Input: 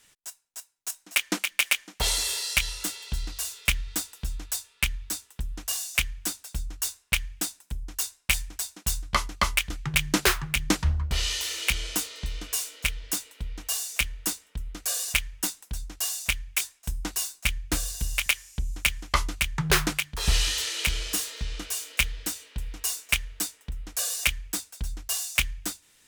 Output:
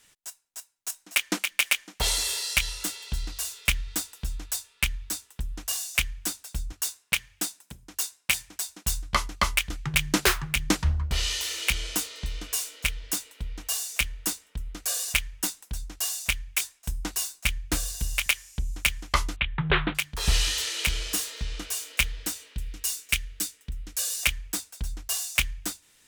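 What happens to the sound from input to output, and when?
6.72–8.68 HPF 140 Hz
19.36–19.95 steep low-pass 3700 Hz 72 dB/oct
22.54–24.23 bell 830 Hz -9 dB 1.5 oct

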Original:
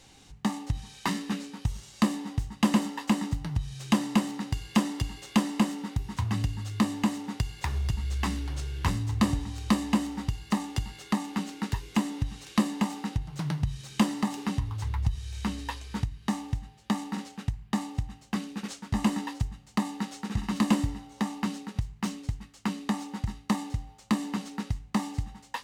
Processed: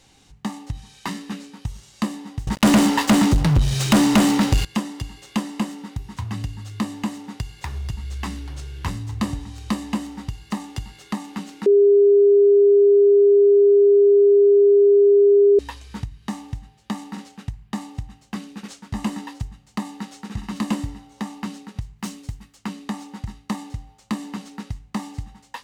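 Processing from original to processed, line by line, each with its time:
2.47–4.65 sample leveller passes 5
11.66–15.59 bleep 404 Hz -10 dBFS
21.98–22.56 high shelf 5600 Hz -> 10000 Hz +8 dB

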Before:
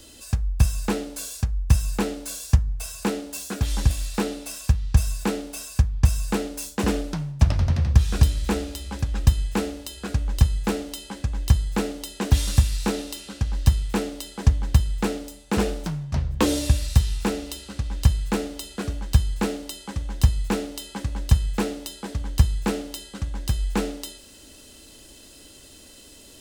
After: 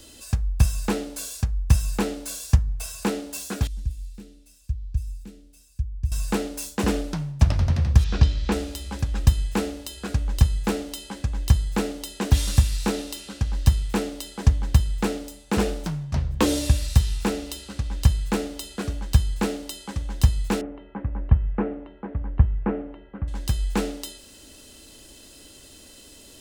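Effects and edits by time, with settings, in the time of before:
3.67–6.12 passive tone stack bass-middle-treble 10-0-1
8.04–8.52 LPF 5400 Hz 24 dB/oct
20.61–23.28 Bessel low-pass 1300 Hz, order 8

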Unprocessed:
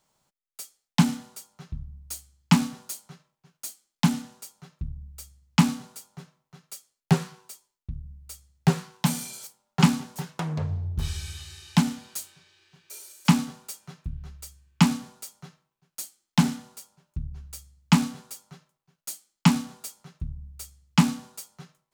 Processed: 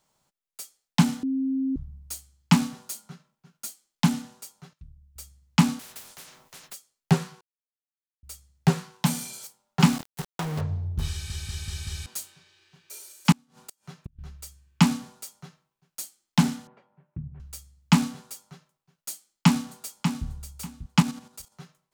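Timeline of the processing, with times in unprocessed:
1.23–1.76 bleep 266 Hz -23 dBFS
2.94–3.67 small resonant body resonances 210/1400 Hz, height 9 dB
4.73–5.16 passive tone stack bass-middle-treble 5-5-5
5.79–6.74 spectral compressor 10:1
7.41–8.23 mute
9.8–10.61 sample gate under -31.5 dBFS
11.11 stutter in place 0.19 s, 5 plays
13.32–14.19 flipped gate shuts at -25 dBFS, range -31 dB
16.67–17.4 speaker cabinet 110–2100 Hz, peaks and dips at 140 Hz +7 dB, 310 Hz +4 dB, 550 Hz +4 dB, 1300 Hz -4 dB
19.12–20.27 echo throw 0.59 s, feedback 20%, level -7.5 dB
21–21.52 level quantiser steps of 10 dB

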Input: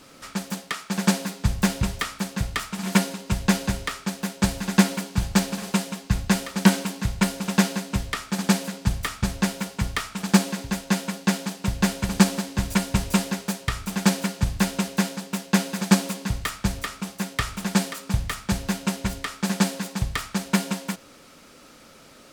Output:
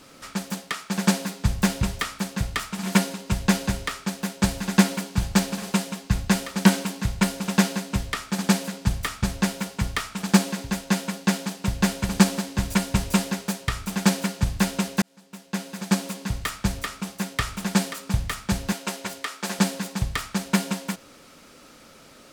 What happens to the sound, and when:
15.02–16.53 fade in
18.72–19.59 HPF 330 Hz

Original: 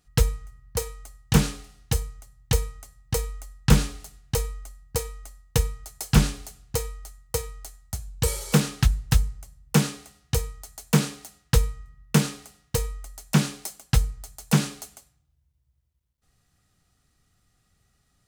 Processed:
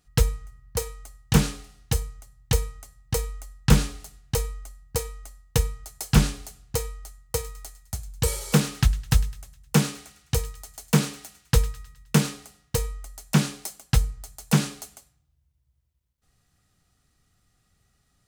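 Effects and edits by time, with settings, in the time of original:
7.2–12.33 thin delay 0.104 s, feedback 51%, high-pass 1500 Hz, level -17 dB

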